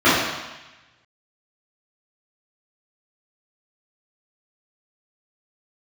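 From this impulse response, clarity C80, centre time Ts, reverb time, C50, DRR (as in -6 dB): 2.5 dB, 82 ms, 1.1 s, -0.5 dB, -14.5 dB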